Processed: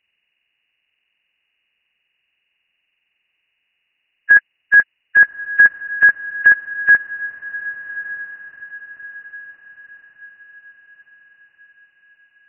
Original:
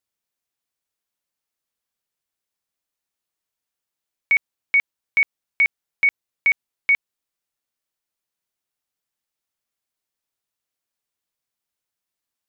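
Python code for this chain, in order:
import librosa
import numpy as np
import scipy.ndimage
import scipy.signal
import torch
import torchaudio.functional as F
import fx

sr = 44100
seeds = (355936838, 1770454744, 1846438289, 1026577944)

y = fx.freq_compress(x, sr, knee_hz=1500.0, ratio=4.0)
y = fx.notch(y, sr, hz=2300.0, q=21.0)
y = fx.echo_diffused(y, sr, ms=1196, feedback_pct=45, wet_db=-13.5)
y = y * librosa.db_to_amplitude(7.5)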